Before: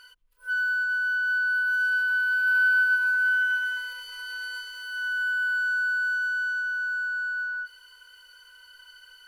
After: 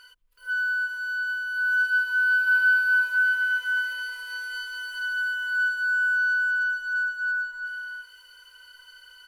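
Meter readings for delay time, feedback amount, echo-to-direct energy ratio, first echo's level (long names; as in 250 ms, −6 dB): 374 ms, repeats not evenly spaced, −5.0 dB, −5.0 dB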